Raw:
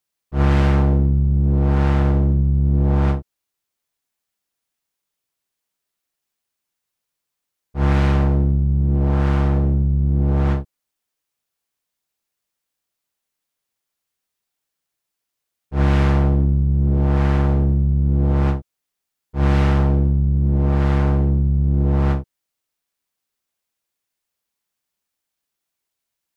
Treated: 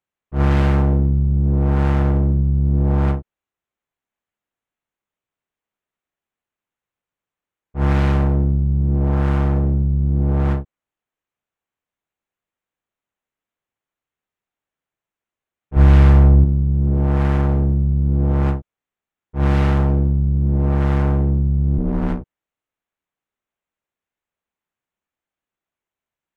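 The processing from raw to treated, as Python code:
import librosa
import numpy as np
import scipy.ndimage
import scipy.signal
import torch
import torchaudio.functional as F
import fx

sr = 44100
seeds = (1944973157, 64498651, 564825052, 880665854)

y = fx.wiener(x, sr, points=9)
y = fx.low_shelf(y, sr, hz=91.0, db=12.0, at=(15.76, 16.44))
y = fx.ring_mod(y, sr, carrier_hz=110.0, at=(21.77, 22.2), fade=0.02)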